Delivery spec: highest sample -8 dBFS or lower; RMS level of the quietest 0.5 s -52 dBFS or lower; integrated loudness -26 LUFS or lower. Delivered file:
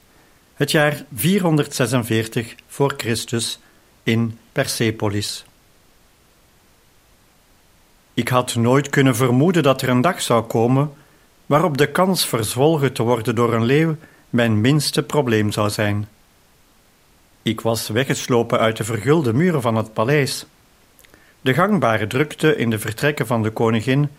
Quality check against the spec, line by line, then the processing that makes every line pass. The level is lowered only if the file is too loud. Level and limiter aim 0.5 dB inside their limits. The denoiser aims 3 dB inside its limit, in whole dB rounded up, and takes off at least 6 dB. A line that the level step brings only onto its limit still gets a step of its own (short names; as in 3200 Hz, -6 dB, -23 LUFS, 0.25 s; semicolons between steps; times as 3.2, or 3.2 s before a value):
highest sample -2.0 dBFS: fail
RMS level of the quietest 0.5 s -54 dBFS: OK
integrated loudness -19.0 LUFS: fail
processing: gain -7.5 dB